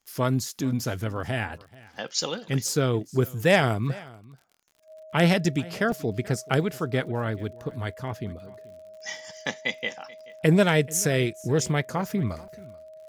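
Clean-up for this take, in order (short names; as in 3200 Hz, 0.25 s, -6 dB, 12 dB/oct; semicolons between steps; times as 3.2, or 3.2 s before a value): de-click; notch 630 Hz, Q 30; interpolate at 0.49/5.92/7.71/11.66/12.48, 2.2 ms; inverse comb 0.433 s -21.5 dB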